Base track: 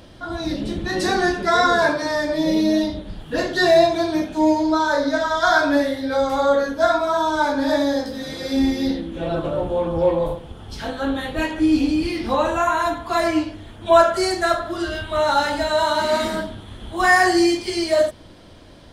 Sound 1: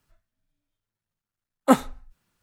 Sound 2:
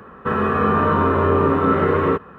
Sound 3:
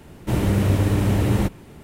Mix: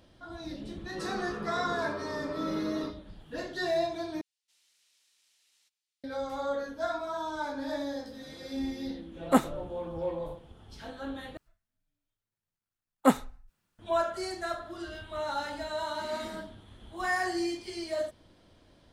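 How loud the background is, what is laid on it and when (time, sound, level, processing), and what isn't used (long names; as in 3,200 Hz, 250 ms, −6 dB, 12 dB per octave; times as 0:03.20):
base track −15 dB
0:00.73: mix in 2 −9 dB + resonators tuned to a chord C#3 minor, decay 0.21 s
0:04.21: overwrite with 3 −17 dB + four-pole ladder band-pass 5,800 Hz, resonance 30%
0:07.64: mix in 1 −5.5 dB
0:11.37: overwrite with 1 −5 dB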